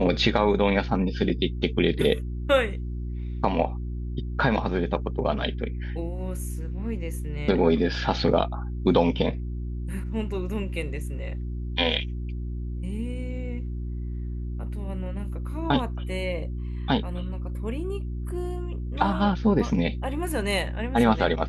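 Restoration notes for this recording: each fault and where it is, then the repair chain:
mains hum 60 Hz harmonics 6 −31 dBFS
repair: hum removal 60 Hz, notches 6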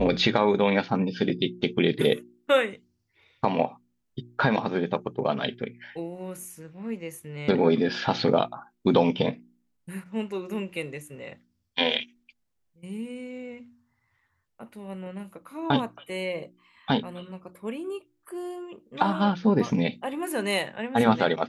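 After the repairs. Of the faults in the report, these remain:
none of them is left

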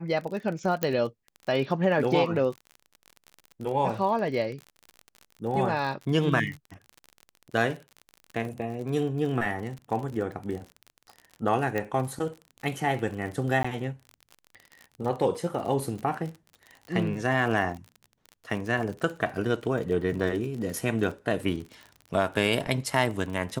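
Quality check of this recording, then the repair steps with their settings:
surface crackle 43 per second −34 dBFS
0:00.83: click −10 dBFS
0:11.78: click −16 dBFS
0:13.63–0:13.64: drop-out 15 ms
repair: click removal
repair the gap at 0:13.63, 15 ms

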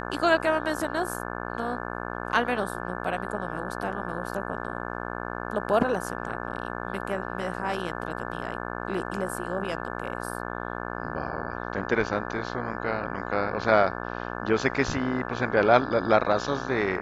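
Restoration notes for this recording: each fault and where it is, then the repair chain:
mains buzz 60 Hz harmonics 29 −34 dBFS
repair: hum removal 60 Hz, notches 29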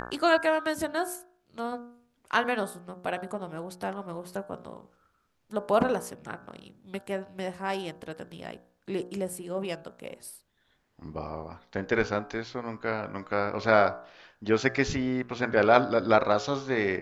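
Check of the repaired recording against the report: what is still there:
none of them is left

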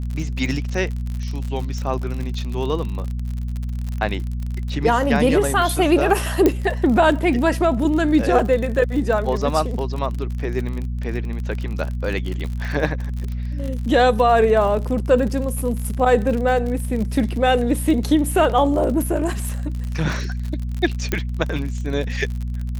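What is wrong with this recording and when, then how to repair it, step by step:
surface crackle 50 per second −26 dBFS
mains hum 60 Hz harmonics 4 −25 dBFS
0:06.46: click −4 dBFS
0:21.12: click −7 dBFS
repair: click removal
hum removal 60 Hz, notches 4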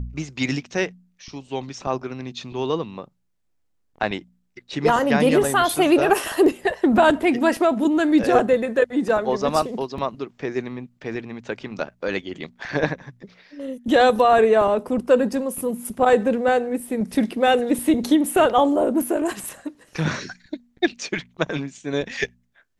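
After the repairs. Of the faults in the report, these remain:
0:06.46: click

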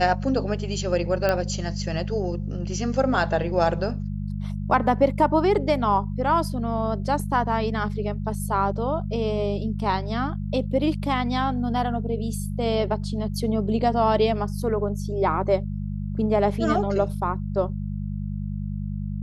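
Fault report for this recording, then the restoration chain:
mains hum 50 Hz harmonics 4 −29 dBFS
0:01.29: click −10 dBFS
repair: click removal
hum removal 50 Hz, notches 4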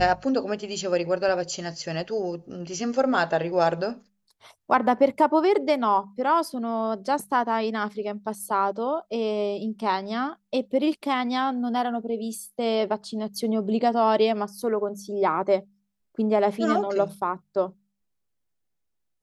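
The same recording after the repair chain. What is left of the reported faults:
none of them is left

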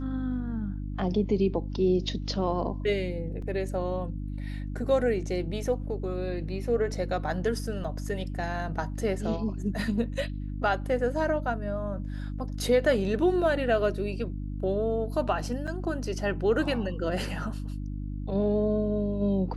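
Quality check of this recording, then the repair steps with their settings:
mains hum 50 Hz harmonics 6 −34 dBFS
0:03.42: drop-out 3.7 ms
0:07.84: drop-out 5 ms
0:15.67–0:15.68: drop-out 6 ms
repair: hum removal 50 Hz, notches 6
repair the gap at 0:03.42, 3.7 ms
repair the gap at 0:07.84, 5 ms
repair the gap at 0:15.67, 6 ms

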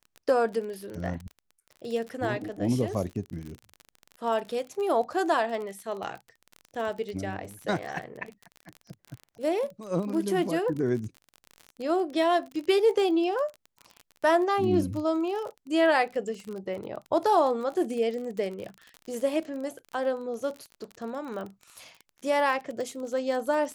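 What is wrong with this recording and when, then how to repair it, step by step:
surface crackle 34 per second −34 dBFS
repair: click removal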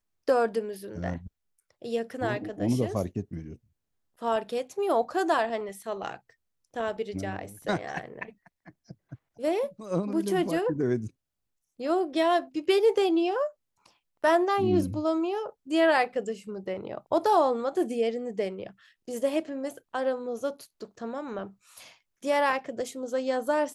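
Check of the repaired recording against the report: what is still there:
none of them is left

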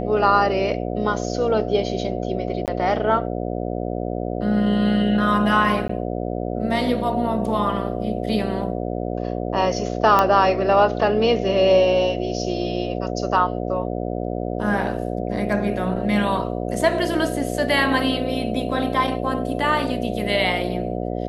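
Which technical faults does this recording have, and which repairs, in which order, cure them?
mains buzz 60 Hz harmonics 12 −26 dBFS
0:02.66–0:02.68: drop-out 18 ms
0:05.88–0:05.89: drop-out 14 ms
0:10.19: click −5 dBFS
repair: click removal
hum removal 60 Hz, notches 12
repair the gap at 0:02.66, 18 ms
repair the gap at 0:05.88, 14 ms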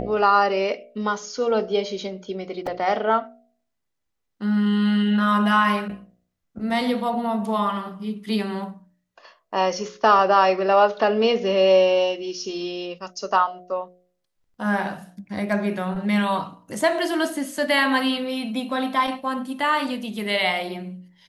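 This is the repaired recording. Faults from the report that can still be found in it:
none of them is left

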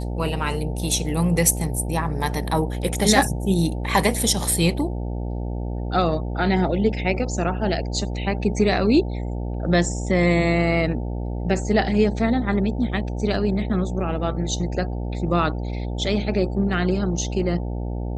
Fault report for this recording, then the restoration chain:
mains buzz 60 Hz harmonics 15 −27 dBFS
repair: hum removal 60 Hz, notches 15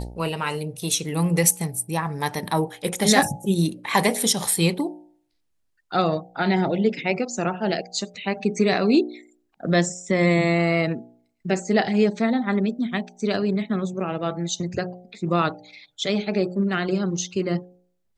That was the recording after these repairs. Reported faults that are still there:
none of them is left

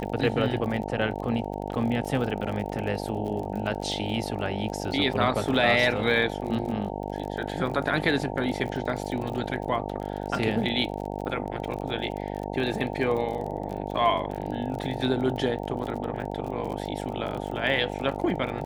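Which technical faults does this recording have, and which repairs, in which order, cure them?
mains buzz 50 Hz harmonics 18 −33 dBFS
surface crackle 36 per second −33 dBFS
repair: click removal
hum removal 50 Hz, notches 18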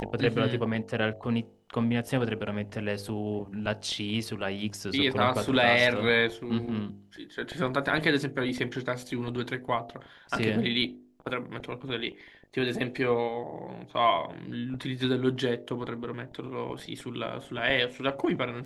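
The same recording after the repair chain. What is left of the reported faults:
none of them is left

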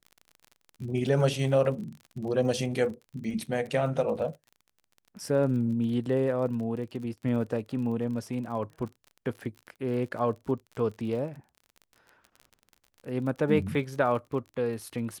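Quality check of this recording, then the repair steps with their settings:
surface crackle 39 per second −38 dBFS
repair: click removal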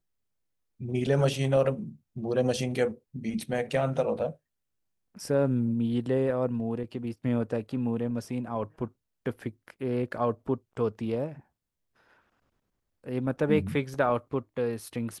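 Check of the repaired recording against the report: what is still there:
none of them is left

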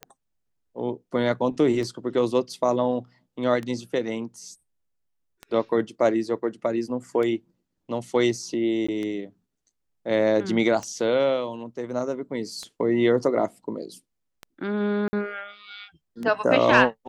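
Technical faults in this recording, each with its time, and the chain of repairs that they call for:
scratch tick 33 1/3 rpm −20 dBFS
0:08.87–0:08.88: drop-out 15 ms
0:15.08–0:15.13: drop-out 50 ms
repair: click removal
repair the gap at 0:08.87, 15 ms
repair the gap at 0:15.08, 50 ms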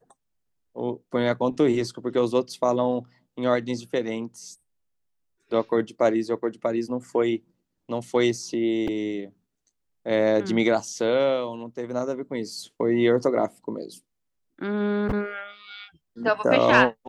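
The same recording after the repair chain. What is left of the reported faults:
none of them is left

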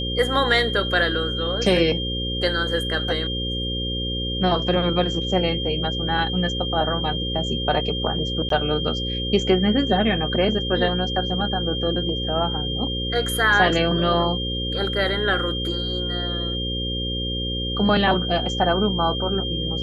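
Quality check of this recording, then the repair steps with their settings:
mains buzz 60 Hz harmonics 9 −28 dBFS
whistle 3,200 Hz −27 dBFS
0:08.49–0:08.50: drop-out 13 ms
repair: hum removal 60 Hz, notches 9
notch filter 3,200 Hz, Q 30
repair the gap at 0:08.49, 13 ms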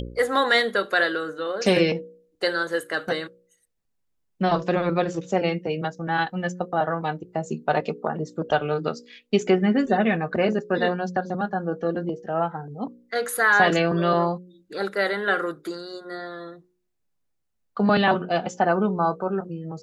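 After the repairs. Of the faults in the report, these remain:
none of them is left

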